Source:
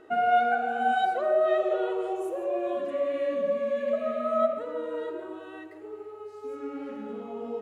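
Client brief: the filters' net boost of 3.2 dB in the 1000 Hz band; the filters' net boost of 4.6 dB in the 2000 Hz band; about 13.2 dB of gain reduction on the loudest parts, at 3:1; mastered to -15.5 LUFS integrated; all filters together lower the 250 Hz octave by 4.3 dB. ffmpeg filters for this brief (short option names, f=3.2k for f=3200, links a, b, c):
-af "equalizer=f=250:t=o:g=-7,equalizer=f=1k:t=o:g=5.5,equalizer=f=2k:t=o:g=4,acompressor=threshold=-35dB:ratio=3,volume=20.5dB"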